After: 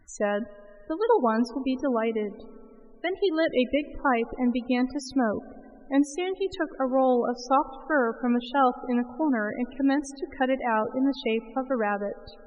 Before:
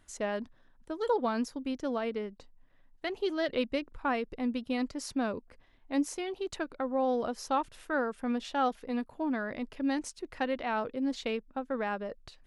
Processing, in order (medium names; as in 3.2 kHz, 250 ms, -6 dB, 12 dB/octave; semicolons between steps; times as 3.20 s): spring tank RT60 3.1 s, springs 31/37 ms, chirp 40 ms, DRR 16.5 dB; loudest bins only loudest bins 32; trim +7 dB